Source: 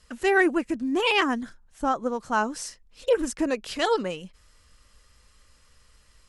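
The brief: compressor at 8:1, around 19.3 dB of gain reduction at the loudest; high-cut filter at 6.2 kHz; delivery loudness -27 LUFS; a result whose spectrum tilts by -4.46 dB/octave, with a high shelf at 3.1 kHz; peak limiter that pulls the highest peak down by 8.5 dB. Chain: low-pass 6.2 kHz; treble shelf 3.1 kHz -8 dB; compression 8:1, threshold -37 dBFS; trim +17 dB; peak limiter -16.5 dBFS

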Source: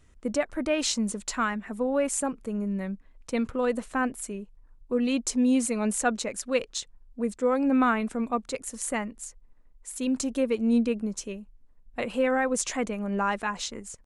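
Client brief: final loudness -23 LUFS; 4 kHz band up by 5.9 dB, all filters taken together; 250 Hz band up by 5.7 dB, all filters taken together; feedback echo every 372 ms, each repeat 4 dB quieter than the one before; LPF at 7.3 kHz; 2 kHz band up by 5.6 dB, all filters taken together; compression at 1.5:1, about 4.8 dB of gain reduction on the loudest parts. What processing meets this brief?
low-pass 7.3 kHz; peaking EQ 250 Hz +6 dB; peaking EQ 2 kHz +6 dB; peaking EQ 4 kHz +6 dB; compression 1.5:1, threshold -27 dBFS; feedback delay 372 ms, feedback 63%, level -4 dB; trim +2.5 dB

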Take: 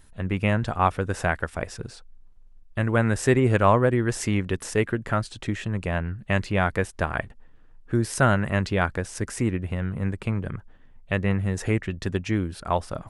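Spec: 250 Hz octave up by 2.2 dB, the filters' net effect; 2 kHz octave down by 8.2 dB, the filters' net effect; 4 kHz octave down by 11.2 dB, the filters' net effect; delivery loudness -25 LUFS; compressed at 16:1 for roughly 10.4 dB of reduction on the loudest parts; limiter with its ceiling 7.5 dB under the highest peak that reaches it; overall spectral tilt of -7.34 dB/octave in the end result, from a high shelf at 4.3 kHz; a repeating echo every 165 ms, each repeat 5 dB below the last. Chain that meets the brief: peaking EQ 250 Hz +3 dB; peaking EQ 2 kHz -8.5 dB; peaking EQ 4 kHz -7.5 dB; treble shelf 4.3 kHz -8.5 dB; compression 16:1, threshold -24 dBFS; peak limiter -21 dBFS; feedback delay 165 ms, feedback 56%, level -5 dB; trim +7.5 dB

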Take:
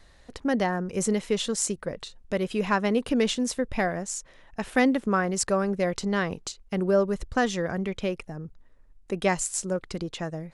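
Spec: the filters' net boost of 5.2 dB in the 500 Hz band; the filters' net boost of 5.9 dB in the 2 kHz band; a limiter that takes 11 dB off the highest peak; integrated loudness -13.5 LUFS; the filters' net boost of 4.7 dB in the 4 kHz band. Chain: peaking EQ 500 Hz +6 dB; peaking EQ 2 kHz +6 dB; peaking EQ 4 kHz +4 dB; trim +13.5 dB; peak limiter -2.5 dBFS

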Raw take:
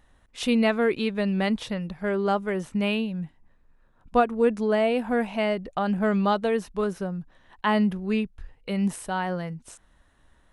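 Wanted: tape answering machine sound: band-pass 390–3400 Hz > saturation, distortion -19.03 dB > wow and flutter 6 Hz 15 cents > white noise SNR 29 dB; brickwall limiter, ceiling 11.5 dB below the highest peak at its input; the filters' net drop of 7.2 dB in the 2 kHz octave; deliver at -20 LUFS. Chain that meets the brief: peaking EQ 2 kHz -9 dB; peak limiter -21 dBFS; band-pass 390–3400 Hz; saturation -24 dBFS; wow and flutter 6 Hz 15 cents; white noise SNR 29 dB; trim +16 dB

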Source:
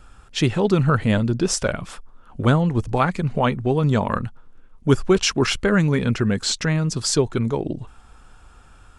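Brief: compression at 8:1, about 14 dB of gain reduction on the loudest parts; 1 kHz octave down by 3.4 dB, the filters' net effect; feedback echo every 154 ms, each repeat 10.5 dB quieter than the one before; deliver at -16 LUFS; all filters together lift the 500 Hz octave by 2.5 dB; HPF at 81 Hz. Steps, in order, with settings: high-pass 81 Hz; peaking EQ 500 Hz +4.5 dB; peaking EQ 1 kHz -6 dB; compression 8:1, threshold -25 dBFS; feedback delay 154 ms, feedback 30%, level -10.5 dB; trim +13.5 dB

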